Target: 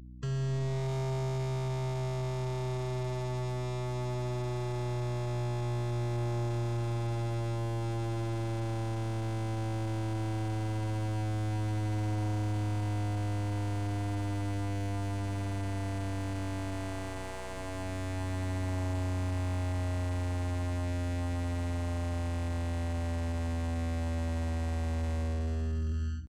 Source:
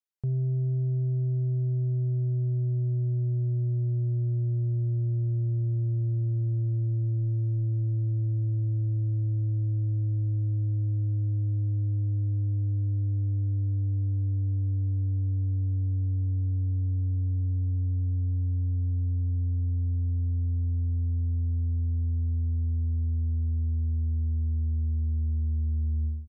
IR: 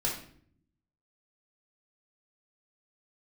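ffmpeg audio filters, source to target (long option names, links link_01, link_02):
-filter_complex "[0:a]aemphasis=mode=production:type=bsi,afftfilt=real='re*gte(hypot(re,im),0.0112)':imag='im*gte(hypot(re,im),0.0112)':win_size=1024:overlap=0.75,aresample=16000,acrusher=samples=11:mix=1:aa=0.000001,aresample=44100,dynaudnorm=framelen=170:gausssize=11:maxgain=16.5dB,alimiter=limit=-18dB:level=0:latency=1:release=57,acrossover=split=170|420[link_01][link_02][link_03];[link_01]acompressor=threshold=-29dB:ratio=4[link_04];[link_02]acompressor=threshold=-39dB:ratio=4[link_05];[link_03]acompressor=threshold=-47dB:ratio=4[link_06];[link_04][link_05][link_06]amix=inputs=3:normalize=0,aeval=exprs='0.0668*(cos(1*acos(clip(val(0)/0.0668,-1,1)))-cos(1*PI/2))+0.0237*(cos(5*acos(clip(val(0)/0.0668,-1,1)))-cos(5*PI/2))+0.0106*(cos(6*acos(clip(val(0)/0.0668,-1,1)))-cos(6*PI/2))+0.00422*(cos(8*acos(clip(val(0)/0.0668,-1,1)))-cos(8*PI/2))':channel_layout=same,bandreject=frequency=92.12:width_type=h:width=4,bandreject=frequency=184.24:width_type=h:width=4,bandreject=frequency=276.36:width_type=h:width=4,aeval=exprs='val(0)+0.00794*(sin(2*PI*60*n/s)+sin(2*PI*2*60*n/s)/2+sin(2*PI*3*60*n/s)/3+sin(2*PI*4*60*n/s)/4+sin(2*PI*5*60*n/s)/5)':channel_layout=same,asetrate=45392,aresample=44100,atempo=0.971532,asoftclip=type=tanh:threshold=-20.5dB,asplit=2[link_07][link_08];[link_08]aecho=0:1:76|152:0.141|0.0367[link_09];[link_07][link_09]amix=inputs=2:normalize=0,volume=-3.5dB"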